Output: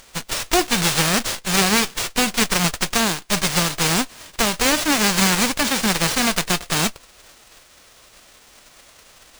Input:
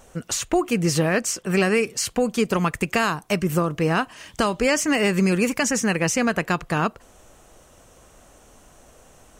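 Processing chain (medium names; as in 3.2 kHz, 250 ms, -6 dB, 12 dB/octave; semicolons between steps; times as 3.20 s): formants flattened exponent 0.1; sliding maximum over 3 samples; trim +3.5 dB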